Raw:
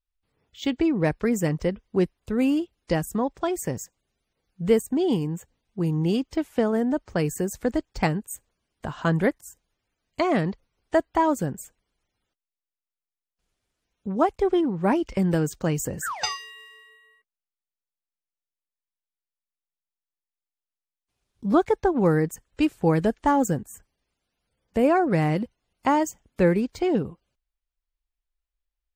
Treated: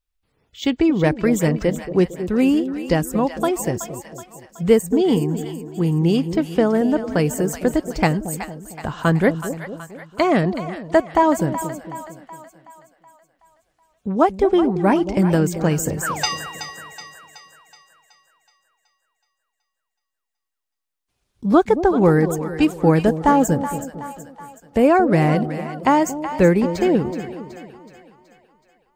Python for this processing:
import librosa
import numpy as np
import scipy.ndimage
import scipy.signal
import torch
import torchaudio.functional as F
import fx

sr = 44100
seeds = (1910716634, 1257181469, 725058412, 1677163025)

y = fx.echo_split(x, sr, split_hz=680.0, low_ms=227, high_ms=374, feedback_pct=52, wet_db=-10.5)
y = y * 10.0 ** (5.5 / 20.0)